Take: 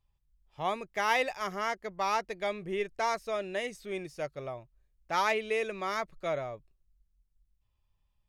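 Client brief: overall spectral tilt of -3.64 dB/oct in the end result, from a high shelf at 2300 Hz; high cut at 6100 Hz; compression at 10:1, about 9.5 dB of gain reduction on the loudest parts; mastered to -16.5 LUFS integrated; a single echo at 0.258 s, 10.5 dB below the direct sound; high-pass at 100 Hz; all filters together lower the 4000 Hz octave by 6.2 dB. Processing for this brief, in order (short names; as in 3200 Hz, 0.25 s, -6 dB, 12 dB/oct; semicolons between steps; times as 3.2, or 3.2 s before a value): HPF 100 Hz; LPF 6100 Hz; high shelf 2300 Hz -3.5 dB; bell 4000 Hz -4.5 dB; compressor 10:1, threshold -34 dBFS; echo 0.258 s -10.5 dB; gain +23 dB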